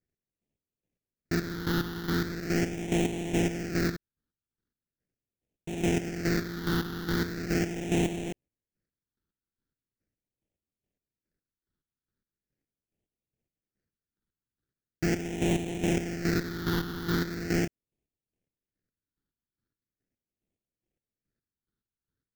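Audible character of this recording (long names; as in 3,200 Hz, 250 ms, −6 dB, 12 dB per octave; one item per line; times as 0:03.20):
chopped level 2.4 Hz, depth 65%, duty 35%
aliases and images of a low sample rate 1,100 Hz, jitter 20%
phaser sweep stages 6, 0.4 Hz, lowest notch 640–1,300 Hz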